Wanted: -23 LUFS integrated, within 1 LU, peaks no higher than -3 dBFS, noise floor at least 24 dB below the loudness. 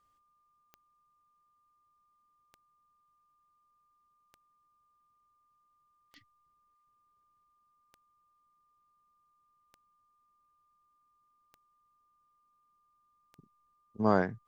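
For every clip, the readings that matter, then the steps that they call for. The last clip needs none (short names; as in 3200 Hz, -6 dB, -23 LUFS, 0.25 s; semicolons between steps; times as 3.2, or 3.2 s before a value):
clicks 8; steady tone 1200 Hz; tone level -70 dBFS; loudness -29.0 LUFS; peak -11.0 dBFS; loudness target -23.0 LUFS
-> de-click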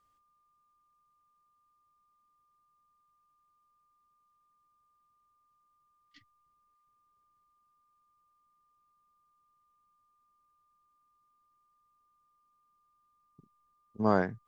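clicks 0; steady tone 1200 Hz; tone level -70 dBFS
-> notch 1200 Hz, Q 30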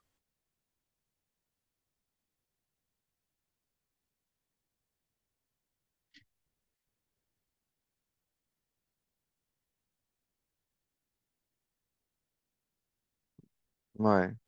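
steady tone none; loudness -29.5 LUFS; peak -11.0 dBFS; loudness target -23.0 LUFS
-> gain +6.5 dB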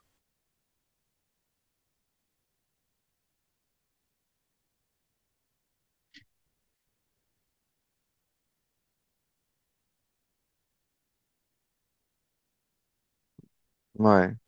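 loudness -23.0 LUFS; peak -4.5 dBFS; noise floor -82 dBFS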